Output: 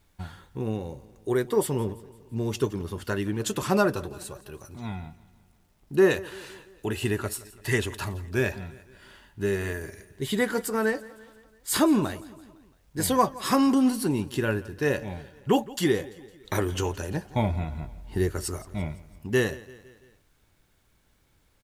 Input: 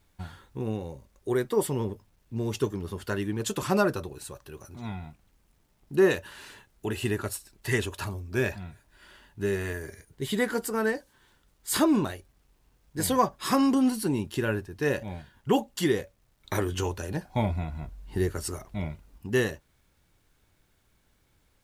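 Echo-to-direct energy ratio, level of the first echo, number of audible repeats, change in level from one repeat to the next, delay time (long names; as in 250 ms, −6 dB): −18.5 dB, −20.0 dB, 3, −5.0 dB, 169 ms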